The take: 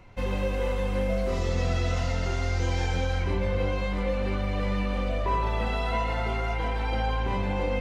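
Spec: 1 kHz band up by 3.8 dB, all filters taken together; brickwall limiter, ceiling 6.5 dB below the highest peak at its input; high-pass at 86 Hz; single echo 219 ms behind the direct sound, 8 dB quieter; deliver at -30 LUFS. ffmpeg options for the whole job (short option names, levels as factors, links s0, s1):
-af "highpass=86,equalizer=f=1000:t=o:g=4.5,alimiter=limit=0.0891:level=0:latency=1,aecho=1:1:219:0.398,volume=0.944"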